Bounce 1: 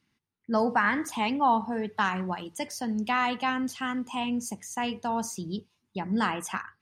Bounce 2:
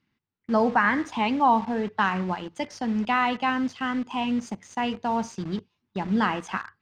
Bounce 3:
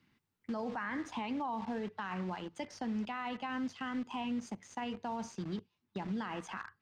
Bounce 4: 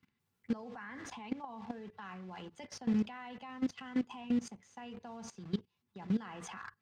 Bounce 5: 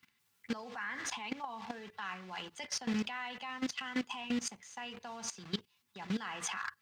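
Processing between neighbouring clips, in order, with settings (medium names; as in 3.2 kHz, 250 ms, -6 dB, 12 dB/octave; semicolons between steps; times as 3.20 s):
in parallel at -5 dB: word length cut 6-bit, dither none; on the sum: distance through air 150 m
peak limiter -21.5 dBFS, peak gain reduction 11.5 dB; three bands compressed up and down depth 40%; trim -8.5 dB
comb of notches 310 Hz; level held to a coarse grid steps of 18 dB; trim +7.5 dB
tilt shelf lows -8.5 dB, about 810 Hz; trim +3.5 dB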